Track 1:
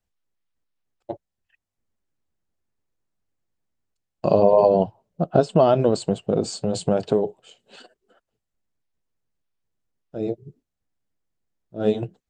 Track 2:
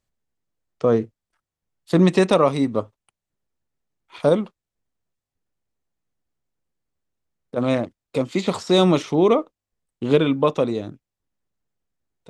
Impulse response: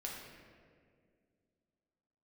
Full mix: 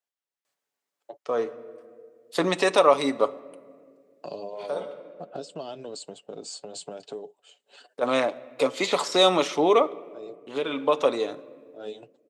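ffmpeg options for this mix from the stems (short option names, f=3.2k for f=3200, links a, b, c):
-filter_complex "[0:a]acrossover=split=310|3000[a][b][c];[b]acompressor=threshold=-32dB:ratio=5[d];[a][d][c]amix=inputs=3:normalize=0,volume=-5.5dB,asplit=2[e][f];[1:a]alimiter=limit=-8.5dB:level=0:latency=1:release=230,adelay=450,volume=3dB,asplit=2[g][h];[h]volume=-14.5dB[i];[f]apad=whole_len=562040[j];[g][j]sidechaincompress=threshold=-45dB:ratio=8:attack=23:release=665[k];[2:a]atrim=start_sample=2205[l];[i][l]afir=irnorm=-1:irlink=0[m];[e][k][m]amix=inputs=3:normalize=0,highpass=520,aecho=1:1:7:0.33"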